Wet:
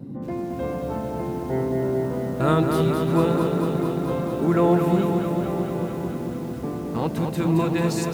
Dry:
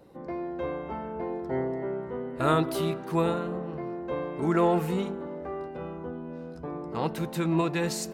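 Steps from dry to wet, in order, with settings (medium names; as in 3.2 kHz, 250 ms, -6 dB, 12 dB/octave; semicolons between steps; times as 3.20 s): bass shelf 440 Hz +7 dB; band noise 110–290 Hz -36 dBFS; bit-crushed delay 222 ms, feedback 80%, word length 8-bit, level -5 dB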